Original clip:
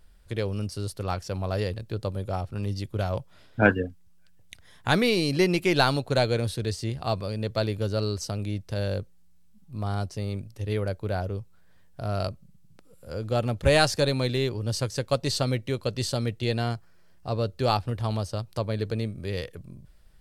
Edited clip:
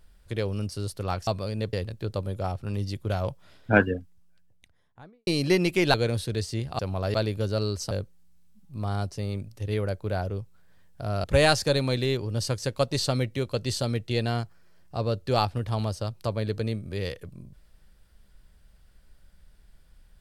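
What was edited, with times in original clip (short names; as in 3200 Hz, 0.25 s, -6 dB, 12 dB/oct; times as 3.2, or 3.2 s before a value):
1.27–1.62 swap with 7.09–7.55
3.7–5.16 studio fade out
5.83–6.24 cut
8.32–8.9 cut
12.23–13.56 cut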